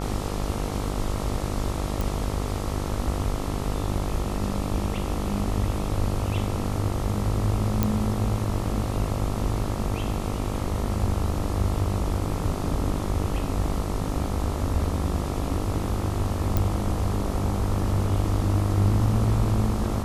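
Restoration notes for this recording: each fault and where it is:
buzz 50 Hz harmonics 27 -30 dBFS
2.01 pop
7.83 pop -8 dBFS
16.57 pop

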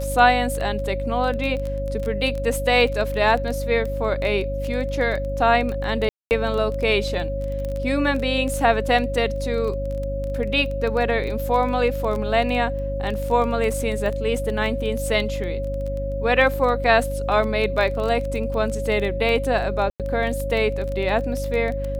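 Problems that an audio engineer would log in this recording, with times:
crackle 14/s -25 dBFS
hum 50 Hz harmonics 6 -28 dBFS
tone 550 Hz -27 dBFS
6.09–6.31 gap 0.219 s
19.9–20 gap 97 ms

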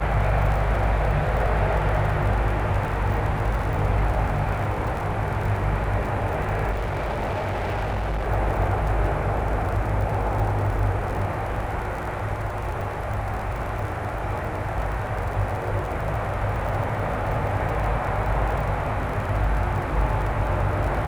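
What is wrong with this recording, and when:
crackle 45/s -30 dBFS
6.71–8.27 clipped -23 dBFS

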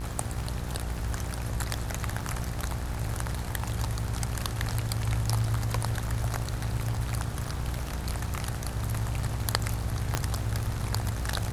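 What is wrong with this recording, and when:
buzz 60 Hz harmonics 30 -35 dBFS
crackle 97/s -37 dBFS
10.15 pop -10 dBFS

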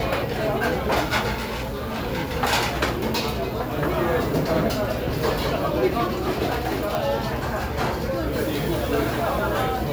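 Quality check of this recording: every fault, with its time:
1.37–2 clipped -24.5 dBFS
6.95 pop

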